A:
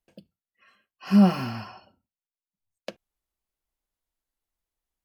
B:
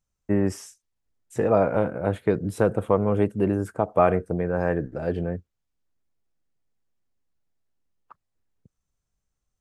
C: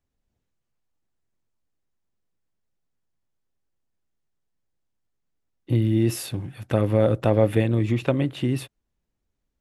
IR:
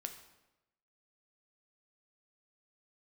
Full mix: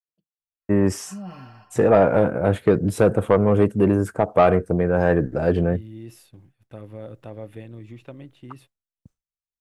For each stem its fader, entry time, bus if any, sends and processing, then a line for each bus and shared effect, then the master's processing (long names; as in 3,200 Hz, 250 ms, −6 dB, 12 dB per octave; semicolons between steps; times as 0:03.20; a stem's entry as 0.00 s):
−12.0 dB, 0.00 s, no send, low-pass filter 2,300 Hz 6 dB per octave; comb filter 6.6 ms, depth 56%; brickwall limiter −16.5 dBFS, peak gain reduction 9 dB
+3.0 dB, 0.40 s, no send, automatic gain control gain up to 5 dB
−18.0 dB, 0.00 s, no send, no processing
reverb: not used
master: downward expander −47 dBFS; soft clipping −6 dBFS, distortion −16 dB